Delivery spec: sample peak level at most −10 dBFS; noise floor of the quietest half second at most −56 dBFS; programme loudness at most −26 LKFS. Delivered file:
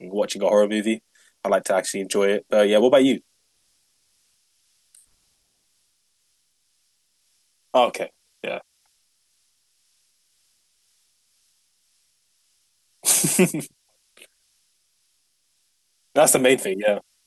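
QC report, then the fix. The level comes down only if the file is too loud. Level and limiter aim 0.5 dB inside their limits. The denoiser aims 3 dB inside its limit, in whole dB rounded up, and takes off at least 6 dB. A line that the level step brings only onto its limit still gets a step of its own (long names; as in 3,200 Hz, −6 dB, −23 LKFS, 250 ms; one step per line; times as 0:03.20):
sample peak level −5.5 dBFS: out of spec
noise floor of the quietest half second −68 dBFS: in spec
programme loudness −20.5 LKFS: out of spec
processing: level −6 dB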